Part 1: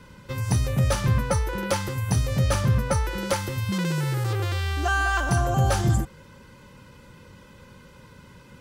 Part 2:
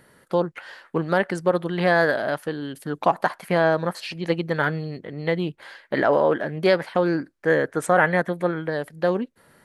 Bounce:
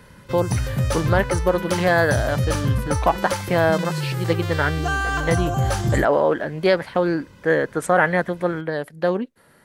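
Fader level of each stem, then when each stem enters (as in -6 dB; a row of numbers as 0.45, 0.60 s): 0.0, +1.0 dB; 0.00, 0.00 s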